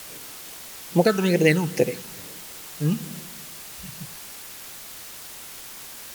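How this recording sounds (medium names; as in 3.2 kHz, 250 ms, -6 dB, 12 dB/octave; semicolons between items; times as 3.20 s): phasing stages 8, 2.3 Hz, lowest notch 550–1400 Hz; a quantiser's noise floor 8-bit, dither triangular; AC-3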